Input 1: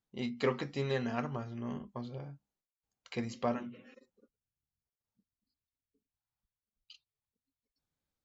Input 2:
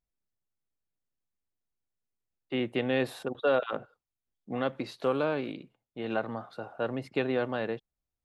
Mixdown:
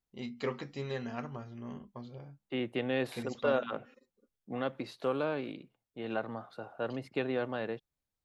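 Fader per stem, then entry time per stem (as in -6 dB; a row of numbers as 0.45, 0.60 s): -4.0, -4.0 dB; 0.00, 0.00 s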